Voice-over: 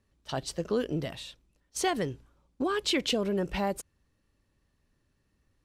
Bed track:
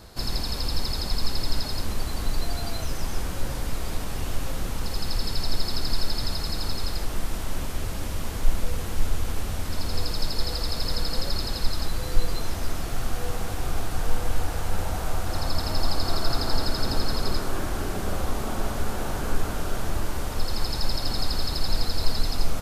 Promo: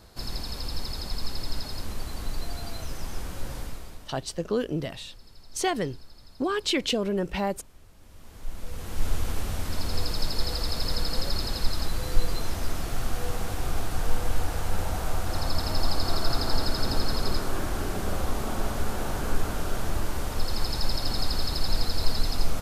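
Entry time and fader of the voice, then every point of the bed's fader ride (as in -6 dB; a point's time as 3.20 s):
3.80 s, +2.0 dB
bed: 3.61 s -5.5 dB
4.32 s -24 dB
7.96 s -24 dB
9.10 s -1 dB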